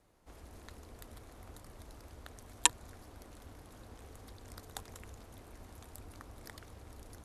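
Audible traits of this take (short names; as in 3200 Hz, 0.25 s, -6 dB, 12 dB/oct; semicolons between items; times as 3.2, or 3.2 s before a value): noise floor -56 dBFS; spectral tilt -2.5 dB/oct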